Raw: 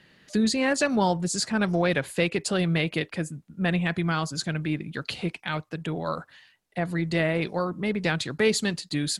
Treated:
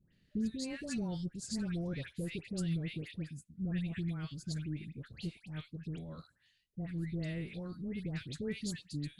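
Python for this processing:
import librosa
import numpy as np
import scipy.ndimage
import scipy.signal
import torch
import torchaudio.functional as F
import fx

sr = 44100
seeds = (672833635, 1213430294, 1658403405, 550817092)

y = fx.tone_stack(x, sr, knobs='10-0-1')
y = fx.dispersion(y, sr, late='highs', ms=130.0, hz=1400.0)
y = y * 10.0 ** (5.5 / 20.0)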